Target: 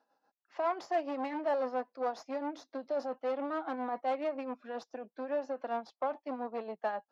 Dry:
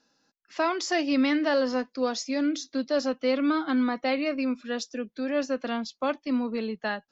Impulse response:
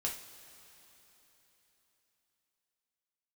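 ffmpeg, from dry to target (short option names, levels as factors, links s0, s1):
-af "tremolo=f=7.3:d=0.64,aeval=exprs='(tanh(28.2*val(0)+0.45)-tanh(0.45))/28.2':c=same,bandpass=f=770:t=q:w=2.2:csg=0,volume=2.37"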